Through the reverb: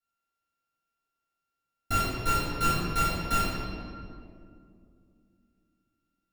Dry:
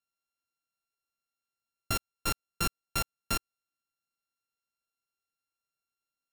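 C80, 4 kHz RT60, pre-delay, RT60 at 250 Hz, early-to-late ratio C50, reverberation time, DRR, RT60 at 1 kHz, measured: 0.0 dB, 1.3 s, 3 ms, 3.5 s, −2.5 dB, 2.3 s, −13.0 dB, 2.0 s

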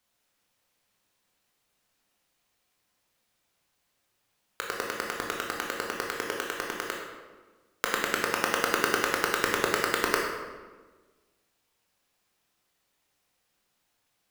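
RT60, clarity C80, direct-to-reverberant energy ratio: 1.3 s, 3.5 dB, −2.0 dB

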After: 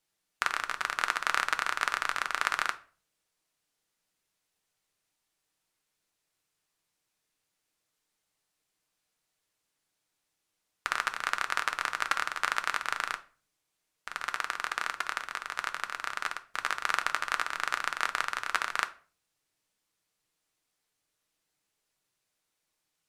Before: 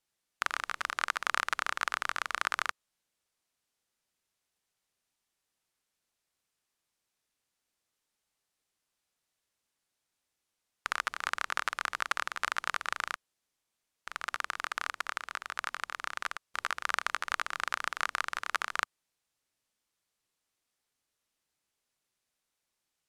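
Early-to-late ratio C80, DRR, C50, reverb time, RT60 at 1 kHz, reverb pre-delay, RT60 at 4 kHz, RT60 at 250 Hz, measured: 22.5 dB, 7.5 dB, 17.0 dB, 0.40 s, 0.40 s, 6 ms, 0.30 s, 0.55 s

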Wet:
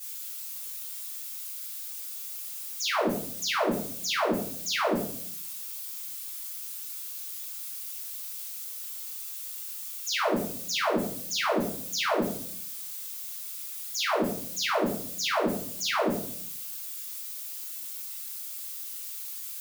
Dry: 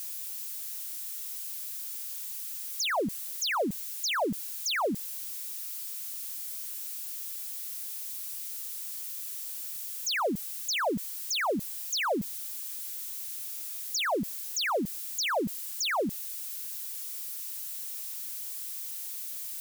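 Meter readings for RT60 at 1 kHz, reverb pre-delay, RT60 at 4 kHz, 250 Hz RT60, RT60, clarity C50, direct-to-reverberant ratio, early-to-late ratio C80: 0.55 s, 5 ms, 0.45 s, 0.85 s, 0.60 s, 4.0 dB, −10.5 dB, 8.5 dB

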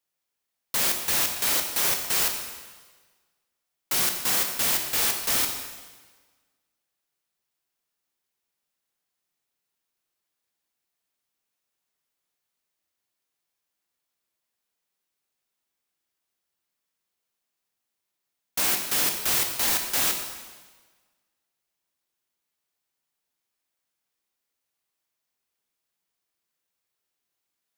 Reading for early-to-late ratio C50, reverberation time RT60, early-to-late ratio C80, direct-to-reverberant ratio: 6.0 dB, 1.4 s, 7.5 dB, 3.5 dB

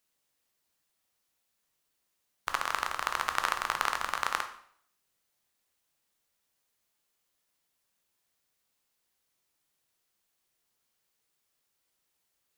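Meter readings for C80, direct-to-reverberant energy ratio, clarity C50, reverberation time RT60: 13.5 dB, 6.0 dB, 10.0 dB, 0.60 s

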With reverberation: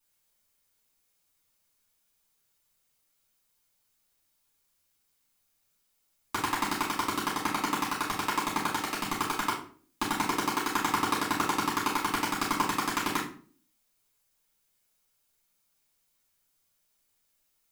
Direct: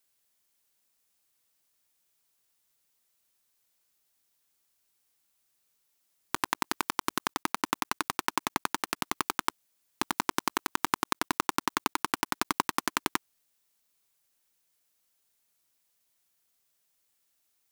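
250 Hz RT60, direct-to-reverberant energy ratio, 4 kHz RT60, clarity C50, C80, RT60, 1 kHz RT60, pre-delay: 0.60 s, −8.5 dB, 0.35 s, 5.0 dB, 10.5 dB, 0.45 s, 0.40 s, 3 ms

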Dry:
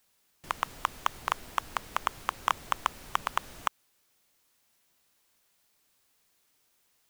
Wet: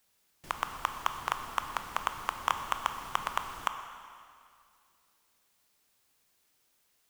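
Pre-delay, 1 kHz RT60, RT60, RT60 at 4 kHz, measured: 13 ms, 2.3 s, 2.3 s, 2.1 s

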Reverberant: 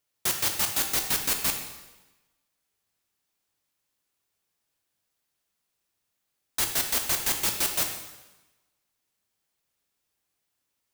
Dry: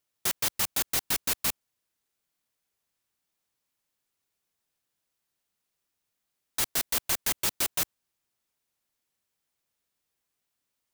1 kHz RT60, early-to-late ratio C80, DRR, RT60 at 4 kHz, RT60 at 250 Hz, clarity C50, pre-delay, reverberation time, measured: 1.1 s, 8.5 dB, 3.5 dB, 1.0 s, 1.1 s, 6.0 dB, 6 ms, 1.1 s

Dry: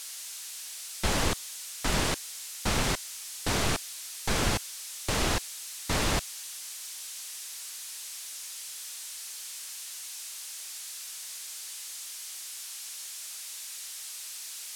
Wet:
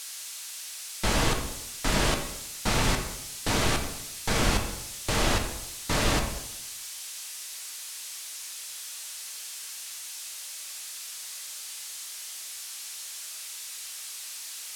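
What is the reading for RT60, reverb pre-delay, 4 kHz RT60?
0.85 s, 3 ms, 0.65 s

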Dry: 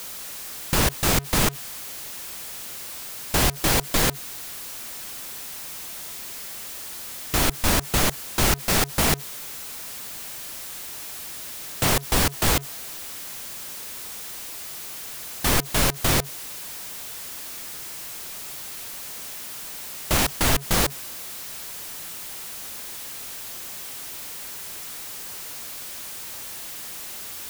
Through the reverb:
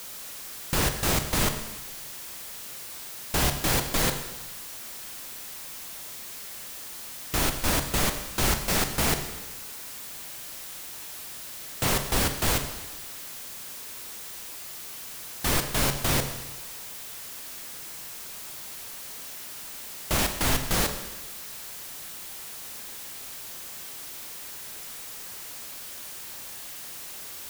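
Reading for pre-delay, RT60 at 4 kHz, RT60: 30 ms, 1.1 s, 1.1 s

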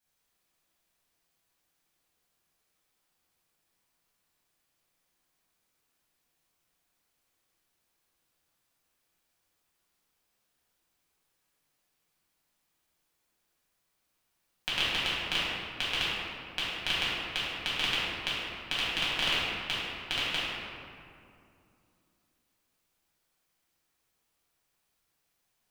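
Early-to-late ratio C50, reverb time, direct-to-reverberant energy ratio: −3.5 dB, 2.5 s, −10.5 dB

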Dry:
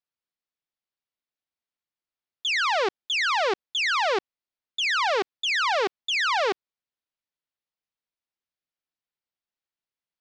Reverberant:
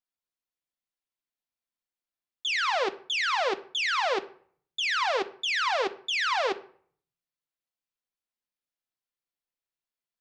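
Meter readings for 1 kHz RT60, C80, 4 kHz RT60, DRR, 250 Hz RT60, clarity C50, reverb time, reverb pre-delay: 0.55 s, 21.5 dB, 0.35 s, 8.5 dB, 0.75 s, 17.0 dB, 0.55 s, 3 ms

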